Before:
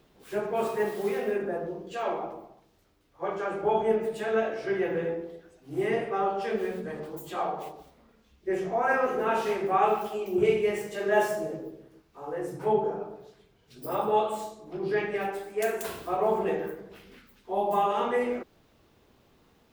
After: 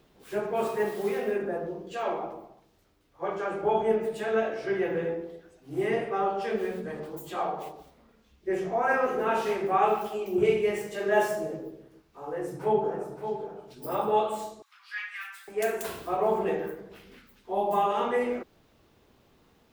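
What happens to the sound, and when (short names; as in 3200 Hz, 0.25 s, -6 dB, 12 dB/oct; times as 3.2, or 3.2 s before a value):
12.24–13.17 echo throw 0.57 s, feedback 10%, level -8 dB
14.62–15.48 steep high-pass 1200 Hz 48 dB/oct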